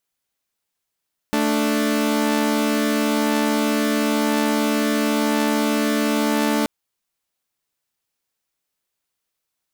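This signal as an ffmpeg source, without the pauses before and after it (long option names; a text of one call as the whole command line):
ffmpeg -f lavfi -i "aevalsrc='0.126*((2*mod(220*t,1)-1)+(2*mod(293.66*t,1)-1))':duration=5.33:sample_rate=44100" out.wav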